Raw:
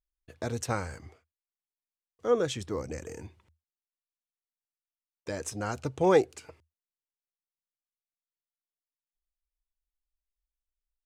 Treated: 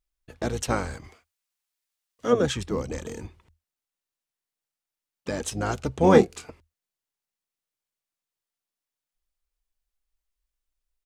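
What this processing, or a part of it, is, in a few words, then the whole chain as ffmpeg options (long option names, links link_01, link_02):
octave pedal: -filter_complex "[0:a]asettb=1/sr,asplit=3[link_01][link_02][link_03];[link_01]atrim=end=1.044[link_04];[link_02]atrim=start=1.04:end=2.33,asetpts=PTS-STARTPTS,afade=type=in:duration=0.004:curve=qsin,afade=type=out:start_time=1.286:duration=0.004:curve=qsin,tiltshelf=frequency=970:gain=-6[link_05];[link_03]atrim=start=2.326[link_06];[link_04][link_05]acrossfade=duration=0.004:curve1=hsin:curve2=qsin[link_07];[link_07][link_06]acrossfade=duration=0.004:curve1=qsin:curve2=hsin,asplit=2[link_08][link_09];[link_09]asetrate=22050,aresample=44100,atempo=2,volume=-6dB[link_10];[link_08][link_10]amix=inputs=2:normalize=0,asettb=1/sr,asplit=3[link_11][link_12][link_13];[link_11]atrim=end=6.004[link_14];[link_12]atrim=start=6:end=6.44,asetpts=PTS-STARTPTS,afade=type=in:duration=0.004:curve=qsin,afade=type=out:start_time=0.436:duration=0.004:curve=qsin,asplit=2[link_15][link_16];[link_16]adelay=25,volume=-7.5dB[link_17];[link_15][link_17]amix=inputs=2:normalize=0,atrim=end_sample=19404[link_18];[link_13]atrim=start=6.436[link_19];[link_14][link_18]acrossfade=duration=0.004:curve1=hsin:curve2=qsin[link_20];[link_20][link_19]acrossfade=duration=0.004:curve1=qsin:curve2=hsin,volume=4.5dB"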